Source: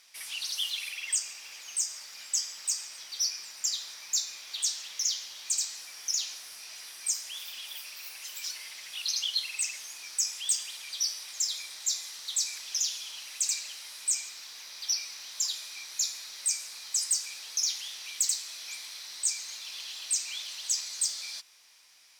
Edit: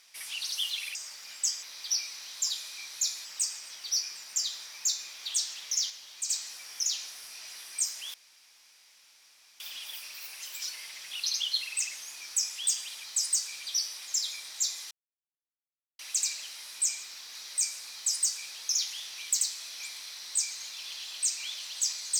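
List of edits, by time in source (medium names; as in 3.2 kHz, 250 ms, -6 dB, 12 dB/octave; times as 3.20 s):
0.95–1.85 s: delete
5.18–5.57 s: gain -4.5 dB
7.42 s: insert room tone 1.46 s
12.17–13.25 s: mute
14.61–16.23 s: move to 2.53 s
16.82–17.38 s: copy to 10.86 s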